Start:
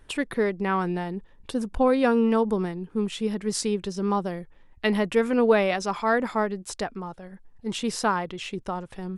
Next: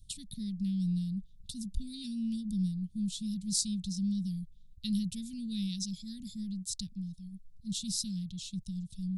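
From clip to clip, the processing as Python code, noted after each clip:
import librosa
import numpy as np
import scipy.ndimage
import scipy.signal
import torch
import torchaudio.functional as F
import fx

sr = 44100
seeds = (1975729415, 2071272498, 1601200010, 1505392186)

y = scipy.signal.sosfilt(scipy.signal.cheby1(4, 1.0, [190.0, 3800.0], 'bandstop', fs=sr, output='sos'), x)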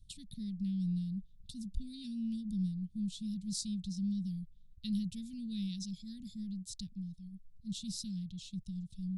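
y = fx.high_shelf(x, sr, hz=5300.0, db=-9.5)
y = F.gain(torch.from_numpy(y), -3.0).numpy()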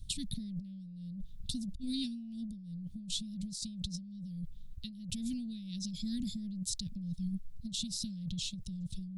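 y = fx.over_compress(x, sr, threshold_db=-46.0, ratio=-1.0)
y = F.gain(torch.from_numpy(y), 6.0).numpy()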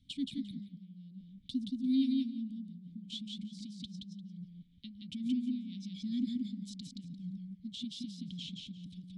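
y = fx.vowel_filter(x, sr, vowel='i')
y = fx.echo_feedback(y, sr, ms=174, feedback_pct=17, wet_db=-3)
y = F.gain(torch.from_numpy(y), 9.0).numpy()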